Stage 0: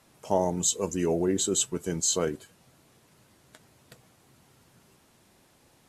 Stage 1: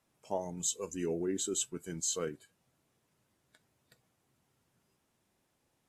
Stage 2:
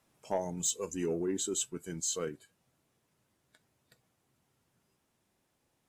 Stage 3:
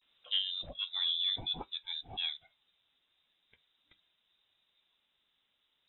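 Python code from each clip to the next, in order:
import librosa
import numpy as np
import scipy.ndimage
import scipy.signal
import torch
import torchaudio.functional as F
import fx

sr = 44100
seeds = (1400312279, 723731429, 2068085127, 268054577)

y1 = fx.noise_reduce_blind(x, sr, reduce_db=8)
y1 = fx.peak_eq(y1, sr, hz=4300.0, db=-3.0, octaves=0.28)
y1 = y1 * librosa.db_to_amplitude(-7.5)
y2 = fx.rider(y1, sr, range_db=10, speed_s=2.0)
y2 = 10.0 ** (-22.0 / 20.0) * np.tanh(y2 / 10.0 ** (-22.0 / 20.0))
y2 = y2 * librosa.db_to_amplitude(1.5)
y3 = fx.vibrato(y2, sr, rate_hz=0.43, depth_cents=63.0)
y3 = fx.freq_invert(y3, sr, carrier_hz=3800)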